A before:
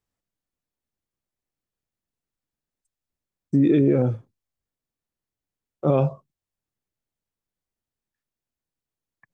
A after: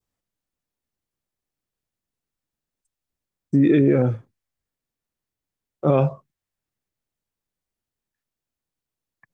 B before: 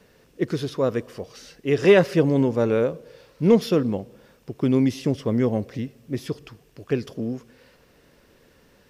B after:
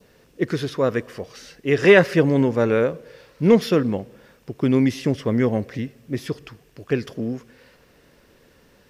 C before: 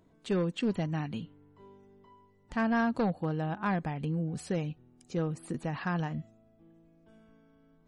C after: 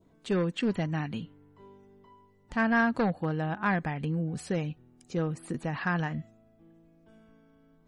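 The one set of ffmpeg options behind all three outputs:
ffmpeg -i in.wav -af "adynamicequalizer=threshold=0.00501:dfrequency=1800:dqfactor=1.5:tfrequency=1800:tqfactor=1.5:attack=5:release=100:ratio=0.375:range=3.5:mode=boostabove:tftype=bell,volume=1.5dB" out.wav

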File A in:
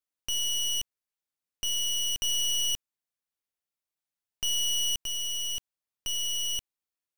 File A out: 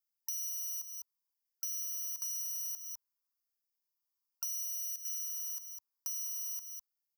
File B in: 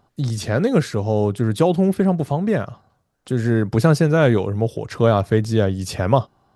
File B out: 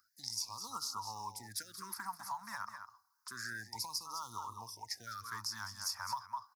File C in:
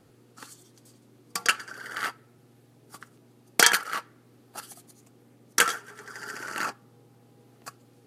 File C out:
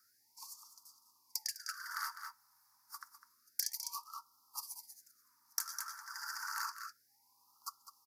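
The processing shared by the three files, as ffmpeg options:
ffmpeg -i in.wav -filter_complex "[0:a]aderivative,asplit=2[link_01][link_02];[link_02]aecho=0:1:203:0.251[link_03];[link_01][link_03]amix=inputs=2:normalize=0,acrusher=bits=6:mode=log:mix=0:aa=0.000001,acrossover=split=190|3000[link_04][link_05][link_06];[link_05]acompressor=threshold=-42dB:ratio=6[link_07];[link_04][link_07][link_06]amix=inputs=3:normalize=0,firequalizer=gain_entry='entry(100,0);entry(150,-21);entry(210,-9);entry(430,-21);entry(620,-21);entry(940,13);entry(3000,-26);entry(5000,2);entry(8000,-13);entry(13000,-4)':delay=0.05:min_phase=1,acompressor=threshold=-41dB:ratio=5,afftfilt=real='re*(1-between(b*sr/1024,350*pow(2000/350,0.5+0.5*sin(2*PI*0.29*pts/sr))/1.41,350*pow(2000/350,0.5+0.5*sin(2*PI*0.29*pts/sr))*1.41))':imag='im*(1-between(b*sr/1024,350*pow(2000/350,0.5+0.5*sin(2*PI*0.29*pts/sr))/1.41,350*pow(2000/350,0.5+0.5*sin(2*PI*0.29*pts/sr))*1.41))':win_size=1024:overlap=0.75,volume=5.5dB" out.wav

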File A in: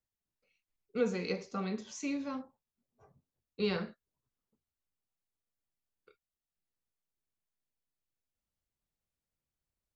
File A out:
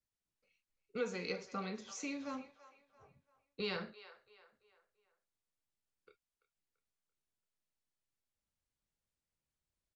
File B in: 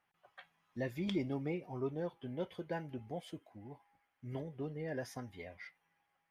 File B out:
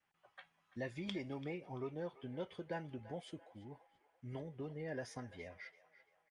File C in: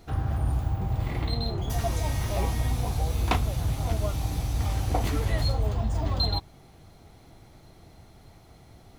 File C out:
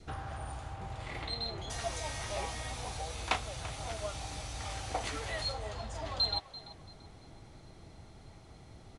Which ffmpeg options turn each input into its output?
ffmpeg -i in.wav -filter_complex "[0:a]bandreject=frequency=710:width=22,adynamicequalizer=threshold=0.00224:dfrequency=1000:dqfactor=3.1:tfrequency=1000:tqfactor=3.1:attack=5:release=100:ratio=0.375:range=2:mode=cutabove:tftype=bell,acrossover=split=540[link_01][link_02];[link_01]acompressor=threshold=-41dB:ratio=5[link_03];[link_02]asplit=2[link_04][link_05];[link_05]adelay=338,lowpass=frequency=3600:poles=1,volume=-14dB,asplit=2[link_06][link_07];[link_07]adelay=338,lowpass=frequency=3600:poles=1,volume=0.44,asplit=2[link_08][link_09];[link_09]adelay=338,lowpass=frequency=3600:poles=1,volume=0.44,asplit=2[link_10][link_11];[link_11]adelay=338,lowpass=frequency=3600:poles=1,volume=0.44[link_12];[link_04][link_06][link_08][link_10][link_12]amix=inputs=5:normalize=0[link_13];[link_03][link_13]amix=inputs=2:normalize=0,aresample=22050,aresample=44100,volume=-1.5dB" out.wav

